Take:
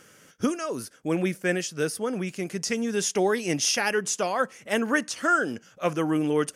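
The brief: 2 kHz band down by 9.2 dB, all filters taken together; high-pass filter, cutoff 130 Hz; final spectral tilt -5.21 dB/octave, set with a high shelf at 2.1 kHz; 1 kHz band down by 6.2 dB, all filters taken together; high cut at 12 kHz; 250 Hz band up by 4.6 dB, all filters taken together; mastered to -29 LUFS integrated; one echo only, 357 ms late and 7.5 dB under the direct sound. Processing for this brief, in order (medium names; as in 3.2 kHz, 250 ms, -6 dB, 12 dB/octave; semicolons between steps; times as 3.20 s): high-pass 130 Hz; low-pass 12 kHz; peaking EQ 250 Hz +7 dB; peaking EQ 1 kHz -5 dB; peaking EQ 2 kHz -8.5 dB; treble shelf 2.1 kHz -4 dB; delay 357 ms -7.5 dB; trim -3.5 dB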